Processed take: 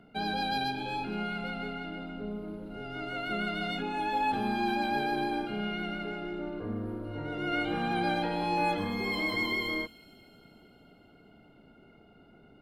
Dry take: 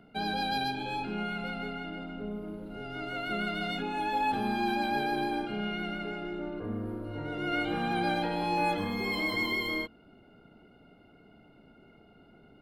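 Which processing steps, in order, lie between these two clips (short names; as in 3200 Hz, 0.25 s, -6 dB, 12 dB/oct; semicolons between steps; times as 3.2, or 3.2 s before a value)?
high shelf 11000 Hz -5.5 dB; thin delay 0.233 s, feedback 65%, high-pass 4800 Hz, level -15 dB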